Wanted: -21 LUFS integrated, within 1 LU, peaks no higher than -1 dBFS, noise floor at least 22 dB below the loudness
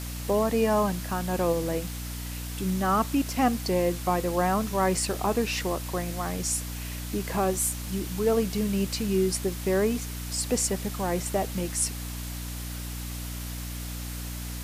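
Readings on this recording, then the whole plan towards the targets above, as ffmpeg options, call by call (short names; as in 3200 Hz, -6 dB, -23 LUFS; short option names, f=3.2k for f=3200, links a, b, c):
hum 60 Hz; harmonics up to 300 Hz; hum level -33 dBFS; noise floor -35 dBFS; noise floor target -50 dBFS; loudness -28.0 LUFS; peak -11.0 dBFS; loudness target -21.0 LUFS
-> -af "bandreject=f=60:t=h:w=4,bandreject=f=120:t=h:w=4,bandreject=f=180:t=h:w=4,bandreject=f=240:t=h:w=4,bandreject=f=300:t=h:w=4"
-af "afftdn=nr=15:nf=-35"
-af "volume=7dB"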